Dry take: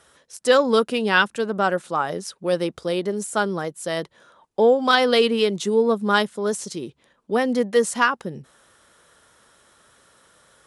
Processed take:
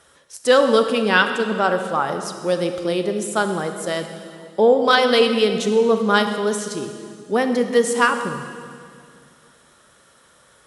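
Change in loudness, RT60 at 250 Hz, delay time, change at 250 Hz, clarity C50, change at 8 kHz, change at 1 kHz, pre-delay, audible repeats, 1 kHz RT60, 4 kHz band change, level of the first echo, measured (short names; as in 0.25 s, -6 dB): +2.0 dB, 2.6 s, none, +2.5 dB, 7.5 dB, +2.5 dB, +2.5 dB, 26 ms, none, 2.1 s, +2.5 dB, none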